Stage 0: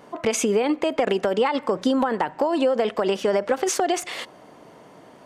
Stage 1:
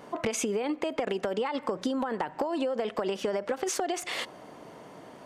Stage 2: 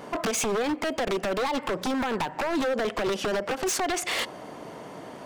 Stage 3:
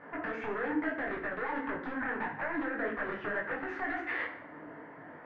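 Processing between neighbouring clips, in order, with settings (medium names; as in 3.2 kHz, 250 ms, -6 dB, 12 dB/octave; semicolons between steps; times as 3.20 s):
compression, threshold -27 dBFS, peak gain reduction 10.5 dB
wavefolder -28 dBFS; trim +6.5 dB
four-pole ladder low-pass 1.9 kHz, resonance 70%; FDN reverb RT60 0.76 s, low-frequency decay 1.55×, high-frequency decay 0.8×, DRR 2 dB; detune thickener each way 59 cents; trim +2.5 dB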